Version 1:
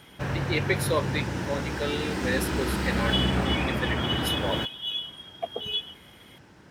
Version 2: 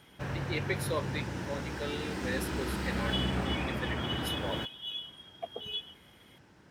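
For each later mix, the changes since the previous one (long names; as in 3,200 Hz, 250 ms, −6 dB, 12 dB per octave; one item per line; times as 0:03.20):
speech −7.5 dB
background −6.5 dB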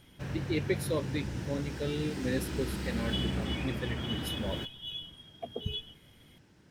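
speech: remove high-pass filter 910 Hz 6 dB per octave
master: add parametric band 1,000 Hz −7.5 dB 2.2 octaves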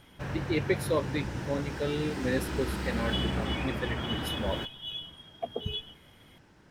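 background: remove high-pass filter 60 Hz
master: add parametric band 1,000 Hz +7.5 dB 2.2 octaves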